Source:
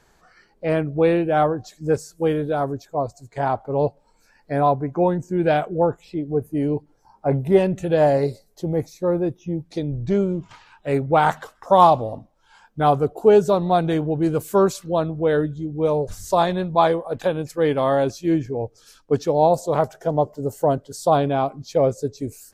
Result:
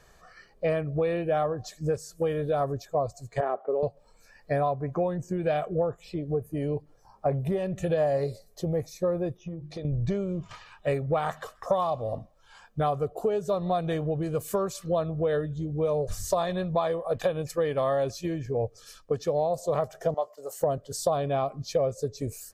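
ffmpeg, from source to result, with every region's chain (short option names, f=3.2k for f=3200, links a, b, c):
-filter_complex "[0:a]asettb=1/sr,asplit=3[a][b][c];[a]atrim=end=3.404[d];[b]atrim=start=3.4:end=3.83,asetpts=PTS-STARTPTS,afade=t=in:d=0.004:c=qsin,afade=t=out:st=0.426:d=0.004:c=qsin,acompressor=threshold=-27dB:ratio=1.5:attack=3.2:release=140:knee=1:detection=peak,highpass=f=260:w=0.5412,highpass=f=260:w=1.3066,equalizer=f=400:t=q:w=4:g=8,equalizer=f=940:t=q:w=4:g=-6,equalizer=f=2.4k:t=q:w=4:g=-5,lowpass=f=2.6k:w=0.5412,lowpass=f=2.6k:w=1.3066[e];[c]atrim=start=3.826[f];[d][e]acrossfade=d=0.004:c1=hsin:c2=qsin[g];[g][f]acrossfade=d=0.004:c1=qsin:c2=hsin,asettb=1/sr,asplit=3[h][i][j];[h]atrim=end=9.374[k];[i]atrim=start=9.37:end=9.85,asetpts=PTS-STARTPTS,afade=t=in:d=0.004:c=qsin,afade=t=out:st=0.476:d=0.004:c=qsin,lowpass=f=3.5k:p=1,bandreject=f=50:t=h:w=6,bandreject=f=100:t=h:w=6,bandreject=f=150:t=h:w=6,bandreject=f=200:t=h:w=6,bandreject=f=250:t=h:w=6,bandreject=f=300:t=h:w=6,bandreject=f=350:t=h:w=6,acompressor=threshold=-31dB:ratio=12:attack=3.2:release=140:knee=1:detection=peak[l];[j]atrim=start=9.846[m];[k][l]acrossfade=d=0.004:c1=hsin:c2=qsin[n];[n][m]acrossfade=d=0.004:c1=qsin:c2=hsin,asettb=1/sr,asplit=3[o][p][q];[o]atrim=end=20.144[r];[p]atrim=start=20.14:end=20.61,asetpts=PTS-STARTPTS,afade=t=in:d=0.004:c=qsin,afade=t=out:st=0.466:d=0.004:c=qsin,agate=range=-33dB:threshold=-43dB:ratio=3:release=100:detection=peak,highpass=850,asplit=2[s][t];[t]adelay=17,volume=-13.5dB[u];[s][u]amix=inputs=2:normalize=0,atrim=end_sample=20727[v];[q]atrim=start=20.606[w];[r][v]acrossfade=d=0.004:c1=hsin:c2=qsin[x];[x][w]acrossfade=d=0.004:c1=qsin:c2=hsin,acompressor=threshold=-24dB:ratio=12,aecho=1:1:1.7:0.48"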